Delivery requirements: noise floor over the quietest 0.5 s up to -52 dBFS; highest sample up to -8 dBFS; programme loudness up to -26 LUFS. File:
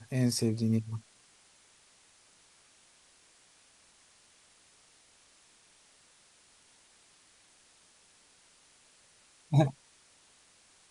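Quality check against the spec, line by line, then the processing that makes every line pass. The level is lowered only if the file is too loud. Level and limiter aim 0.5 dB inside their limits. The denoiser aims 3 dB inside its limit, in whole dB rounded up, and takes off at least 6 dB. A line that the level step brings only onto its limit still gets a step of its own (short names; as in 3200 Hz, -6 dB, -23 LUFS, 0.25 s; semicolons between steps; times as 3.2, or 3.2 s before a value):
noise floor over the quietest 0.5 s -63 dBFS: OK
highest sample -12.0 dBFS: OK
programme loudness -30.5 LUFS: OK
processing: none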